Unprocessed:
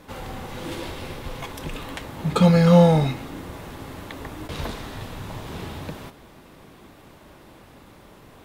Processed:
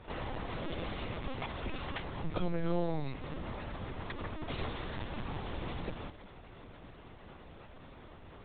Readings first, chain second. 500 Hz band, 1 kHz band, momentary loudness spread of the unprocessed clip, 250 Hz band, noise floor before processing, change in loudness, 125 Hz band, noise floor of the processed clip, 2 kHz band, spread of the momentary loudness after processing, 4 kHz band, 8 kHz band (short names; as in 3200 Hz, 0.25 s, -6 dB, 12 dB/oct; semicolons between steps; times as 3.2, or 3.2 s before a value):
-16.0 dB, -12.0 dB, 22 LU, -17.0 dB, -49 dBFS, -17.5 dB, -17.5 dB, -53 dBFS, -8.5 dB, 18 LU, -10.5 dB, under -35 dB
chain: compressor 3:1, threshold -30 dBFS, peak gain reduction 15.5 dB; LPC vocoder at 8 kHz pitch kept; gain -3.5 dB